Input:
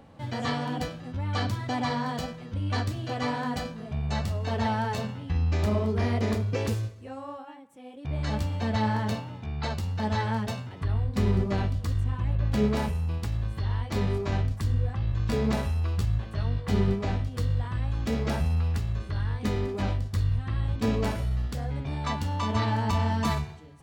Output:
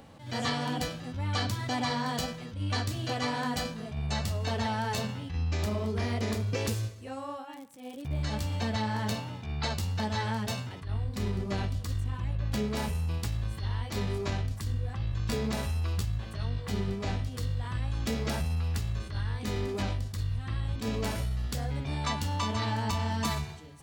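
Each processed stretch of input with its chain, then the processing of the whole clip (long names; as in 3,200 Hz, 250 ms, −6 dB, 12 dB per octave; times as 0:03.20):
0:07.52–0:08.27: low-shelf EQ 380 Hz +5.5 dB + surface crackle 81 per second −44 dBFS
whole clip: downward compressor, threshold −27 dBFS; high-shelf EQ 2,900 Hz +9.5 dB; level that may rise only so fast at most 120 dB per second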